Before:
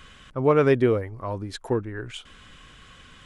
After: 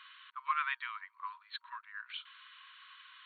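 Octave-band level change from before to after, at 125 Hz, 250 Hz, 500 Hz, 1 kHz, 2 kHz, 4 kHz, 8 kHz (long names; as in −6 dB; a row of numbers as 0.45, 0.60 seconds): below −40 dB, below −40 dB, below −40 dB, −6.0 dB, −4.5 dB, −5.0 dB, below −30 dB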